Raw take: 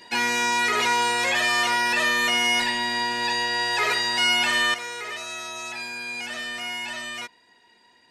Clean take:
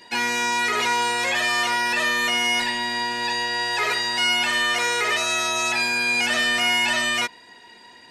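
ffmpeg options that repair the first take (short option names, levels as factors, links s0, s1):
-af "asetnsamples=n=441:p=0,asendcmd='4.74 volume volume 11dB',volume=1"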